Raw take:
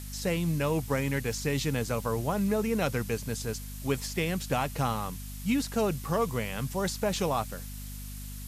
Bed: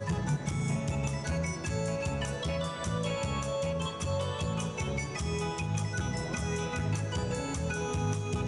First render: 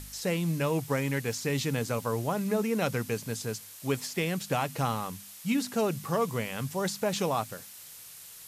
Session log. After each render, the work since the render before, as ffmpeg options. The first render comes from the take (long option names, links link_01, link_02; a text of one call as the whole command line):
ffmpeg -i in.wav -af "bandreject=frequency=50:width_type=h:width=4,bandreject=frequency=100:width_type=h:width=4,bandreject=frequency=150:width_type=h:width=4,bandreject=frequency=200:width_type=h:width=4,bandreject=frequency=250:width_type=h:width=4" out.wav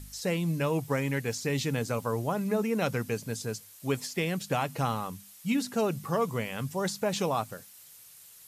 ffmpeg -i in.wav -af "afftdn=noise_reduction=7:noise_floor=-48" out.wav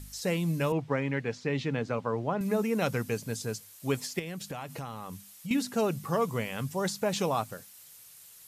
ffmpeg -i in.wav -filter_complex "[0:a]asettb=1/sr,asplit=3[link_01][link_02][link_03];[link_01]atrim=end=0.724[link_04];[link_02]atrim=start=0.72:end=2.41,asetpts=PTS-STARTPTS,afade=type=in:duration=0.004:curve=qsin,afade=type=out:start_time=1.686:duration=0.004:curve=qsin,highpass=120,lowpass=3000[link_05];[link_03]atrim=start=2.406[link_06];[link_04][link_05]acrossfade=duration=0.004:curve1=hsin:curve2=qsin[link_07];[link_07][link_06]acrossfade=duration=0.004:curve1=qsin:curve2=hsin,asettb=1/sr,asplit=3[link_08][link_09][link_10];[link_08]atrim=end=4.194[link_11];[link_09]atrim=start=4.19:end=5.51,asetpts=PTS-STARTPTS,afade=type=in:duration=0.004:curve=qsin,afade=type=out:start_time=1.316:duration=0.004:curve=qsin,acompressor=threshold=-35dB:ratio=5:attack=3.2:release=140:knee=1:detection=peak[link_12];[link_10]atrim=start=5.506[link_13];[link_11][link_12]acrossfade=duration=0.004:curve1=hsin:curve2=qsin[link_14];[link_14][link_13]acrossfade=duration=0.004:curve1=qsin:curve2=hsin" out.wav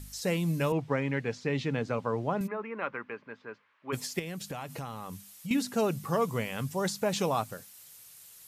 ffmpeg -i in.wav -filter_complex "[0:a]asplit=3[link_01][link_02][link_03];[link_01]afade=type=out:start_time=2.46:duration=0.02[link_04];[link_02]highpass=470,equalizer=frequency=480:width_type=q:width=4:gain=-6,equalizer=frequency=710:width_type=q:width=4:gain=-9,equalizer=frequency=1100:width_type=q:width=4:gain=5,lowpass=frequency=2200:width=0.5412,lowpass=frequency=2200:width=1.3066,afade=type=in:start_time=2.46:duration=0.02,afade=type=out:start_time=3.92:duration=0.02[link_05];[link_03]afade=type=in:start_time=3.92:duration=0.02[link_06];[link_04][link_05][link_06]amix=inputs=3:normalize=0" out.wav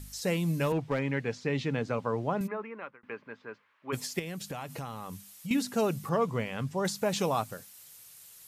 ffmpeg -i in.wav -filter_complex "[0:a]asettb=1/sr,asplit=3[link_01][link_02][link_03];[link_01]atrim=end=0.504[link_04];[link_02]atrim=start=0.5:end=0.99,asetpts=PTS-STARTPTS,afade=type=in:duration=0.004:curve=qsin,afade=type=out:start_time=0.486:duration=0.004:curve=qsin,volume=21.5dB,asoftclip=hard,volume=-21.5dB[link_05];[link_03]atrim=start=0.986[link_06];[link_04][link_05]acrossfade=duration=0.004:curve1=hsin:curve2=qsin[link_07];[link_07][link_06]acrossfade=duration=0.004:curve1=qsin:curve2=hsin,asettb=1/sr,asplit=3[link_08][link_09][link_10];[link_08]atrim=end=6.094[link_11];[link_09]atrim=start=6.09:end=6.85,asetpts=PTS-STARTPTS,afade=type=in:duration=0.004:curve=qsin,afade=type=out:start_time=0.756:duration=0.004:curve=qsin,aemphasis=mode=reproduction:type=50fm[link_12];[link_10]atrim=start=6.846[link_13];[link_11][link_12]acrossfade=duration=0.004:curve1=hsin:curve2=qsin[link_14];[link_14][link_13]acrossfade=duration=0.004:curve1=qsin:curve2=hsin,asplit=2[link_15][link_16];[link_15]atrim=end=3.03,asetpts=PTS-STARTPTS,afade=type=out:start_time=2.55:duration=0.48[link_17];[link_16]atrim=start=3.03,asetpts=PTS-STARTPTS,afade=type=in:duration=0.004:curve=hsin[link_18];[link_17][link_18]concat=n=2:v=0:a=1" out.wav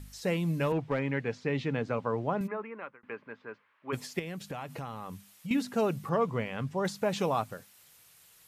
ffmpeg -i in.wav -af "bass=frequency=250:gain=-1,treble=frequency=4000:gain=-8" out.wav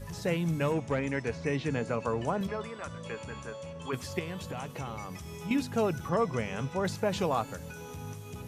ffmpeg -i in.wav -i bed.wav -filter_complex "[1:a]volume=-10.5dB[link_01];[0:a][link_01]amix=inputs=2:normalize=0" out.wav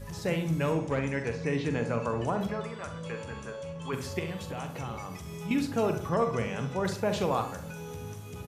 ffmpeg -i in.wav -filter_complex "[0:a]asplit=2[link_01][link_02];[link_02]adelay=43,volume=-10.5dB[link_03];[link_01][link_03]amix=inputs=2:normalize=0,asplit=2[link_04][link_05];[link_05]adelay=67,lowpass=frequency=2000:poles=1,volume=-8.5dB,asplit=2[link_06][link_07];[link_07]adelay=67,lowpass=frequency=2000:poles=1,volume=0.49,asplit=2[link_08][link_09];[link_09]adelay=67,lowpass=frequency=2000:poles=1,volume=0.49,asplit=2[link_10][link_11];[link_11]adelay=67,lowpass=frequency=2000:poles=1,volume=0.49,asplit=2[link_12][link_13];[link_13]adelay=67,lowpass=frequency=2000:poles=1,volume=0.49,asplit=2[link_14][link_15];[link_15]adelay=67,lowpass=frequency=2000:poles=1,volume=0.49[link_16];[link_04][link_06][link_08][link_10][link_12][link_14][link_16]amix=inputs=7:normalize=0" out.wav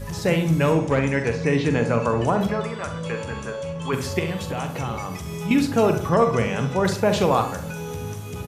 ffmpeg -i in.wav -af "volume=9dB" out.wav